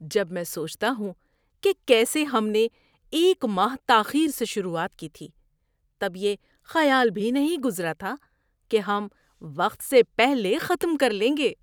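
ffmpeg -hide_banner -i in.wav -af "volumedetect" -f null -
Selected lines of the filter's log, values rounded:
mean_volume: -24.6 dB
max_volume: -4.1 dB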